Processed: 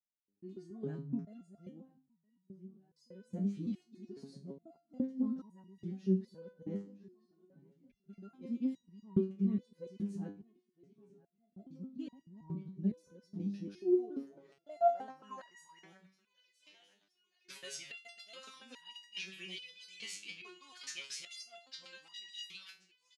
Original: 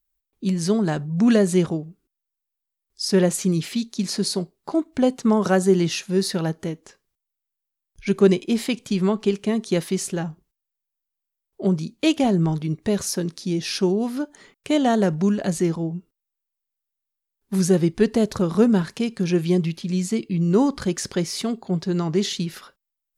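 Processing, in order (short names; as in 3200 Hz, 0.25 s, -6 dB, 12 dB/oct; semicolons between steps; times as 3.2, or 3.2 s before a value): local time reversal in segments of 0.141 s; high shelf 2200 Hz +10.5 dB; vocal rider within 4 dB 0.5 s; feedback echo 0.966 s, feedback 59%, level -22.5 dB; band-pass sweep 220 Hz -> 2700 Hz, 13.57–16.37; stepped resonator 2.4 Hz 100–950 Hz; gain +2 dB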